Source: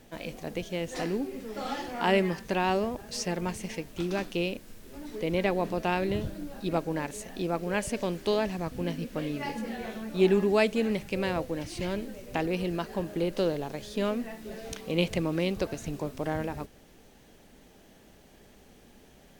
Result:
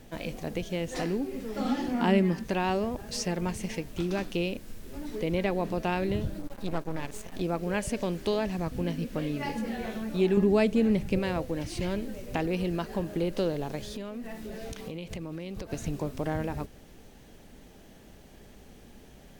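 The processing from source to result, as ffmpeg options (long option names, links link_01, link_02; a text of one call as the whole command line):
ffmpeg -i in.wav -filter_complex "[0:a]asettb=1/sr,asplit=3[link_01][link_02][link_03];[link_01]atrim=end=1.594[link_04];[link_02]atrim=start=1.59:end=2.44,asetpts=PTS-STARTPTS,afade=type=in:duration=0.004:curve=qsin,afade=type=out:start_time=0.846:duration=0.004:curve=qsin,equalizer=frequency=240:width_type=o:width=0.75:gain=13[link_05];[link_03]atrim=start=2.436[link_06];[link_04][link_05]acrossfade=duration=0.004:curve1=hsin:curve2=qsin[link_07];[link_07][link_06]acrossfade=duration=0.004:curve1=qsin:curve2=hsin,asettb=1/sr,asplit=3[link_08][link_09][link_10];[link_08]atrim=end=6.394[link_11];[link_09]atrim=start=6.39:end=7.41,asetpts=PTS-STARTPTS,afade=type=in:duration=0.004:curve=qsin,afade=type=out:start_time=1.016:duration=0.004:curve=qsin,aeval=exprs='max(val(0),0)':channel_layout=same[link_12];[link_10]atrim=start=7.406[link_13];[link_11][link_12]acrossfade=duration=0.004:curve1=hsin:curve2=qsin[link_14];[link_14][link_13]acrossfade=duration=0.004:curve1=qsin:curve2=hsin,asettb=1/sr,asplit=3[link_15][link_16][link_17];[link_15]atrim=end=10.374[link_18];[link_16]atrim=start=10.37:end=11.19,asetpts=PTS-STARTPTS,afade=type=in:duration=0.004:curve=qsin,afade=type=out:start_time=0.816:duration=0.004:curve=qsin,lowshelf=frequency=460:gain=8.5[link_19];[link_17]atrim=start=11.186[link_20];[link_18][link_19]acrossfade=duration=0.004:curve1=hsin:curve2=qsin[link_21];[link_21][link_20]acrossfade=duration=0.004:curve1=qsin:curve2=hsin,asettb=1/sr,asplit=3[link_22][link_23][link_24];[link_22]atrim=end=13.964[link_25];[link_23]atrim=start=13.96:end=15.73,asetpts=PTS-STARTPTS,afade=type=in:duration=0.004:curve=qsin,afade=type=out:start_time=1.766:duration=0.004:curve=qsin,acompressor=threshold=-37dB:ratio=12:attack=3.2:release=140:knee=1:detection=peak[link_26];[link_24]atrim=start=15.726[link_27];[link_25][link_26]acrossfade=duration=0.004:curve1=hsin:curve2=qsin[link_28];[link_28][link_27]acrossfade=duration=0.004:curve1=qsin:curve2=hsin,lowshelf=frequency=180:gain=6,acompressor=threshold=-32dB:ratio=1.5,volume=1.5dB" out.wav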